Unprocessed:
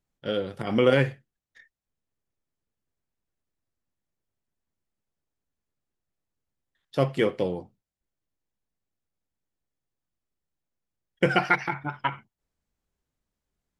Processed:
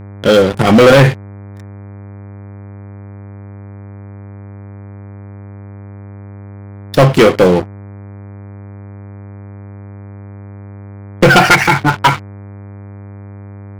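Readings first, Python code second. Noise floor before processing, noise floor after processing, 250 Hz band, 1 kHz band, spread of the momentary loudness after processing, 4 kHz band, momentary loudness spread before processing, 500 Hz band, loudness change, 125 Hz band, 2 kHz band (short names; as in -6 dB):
under -85 dBFS, -32 dBFS, +16.5 dB, +17.0 dB, 9 LU, +17.5 dB, 11 LU, +15.5 dB, +16.0 dB, +18.0 dB, +16.0 dB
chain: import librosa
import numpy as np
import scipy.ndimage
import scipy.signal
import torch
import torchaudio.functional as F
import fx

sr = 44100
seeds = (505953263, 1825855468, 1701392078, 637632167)

y = fx.leveller(x, sr, passes=5)
y = fx.dmg_buzz(y, sr, base_hz=100.0, harmonics=24, level_db=-36.0, tilt_db=-8, odd_only=False)
y = y * 10.0 ** (4.5 / 20.0)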